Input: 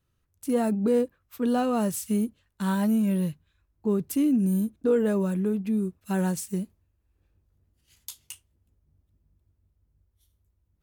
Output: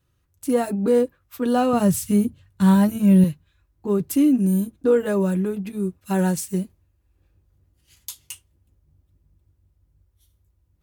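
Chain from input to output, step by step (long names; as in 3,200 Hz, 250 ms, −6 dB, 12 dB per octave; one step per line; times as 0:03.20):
0:01.73–0:03.24: parametric band 110 Hz +15 dB 1.6 octaves
notch comb filter 220 Hz
level +6.5 dB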